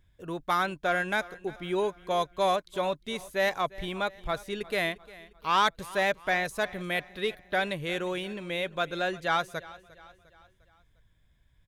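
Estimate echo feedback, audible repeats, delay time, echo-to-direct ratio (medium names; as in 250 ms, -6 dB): 49%, 3, 352 ms, -19.0 dB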